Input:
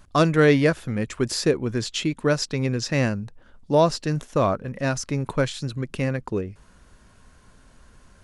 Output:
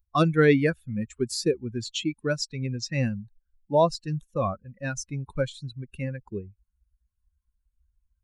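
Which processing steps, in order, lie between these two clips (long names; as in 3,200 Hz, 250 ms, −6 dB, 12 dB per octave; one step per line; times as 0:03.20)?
spectral dynamics exaggerated over time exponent 2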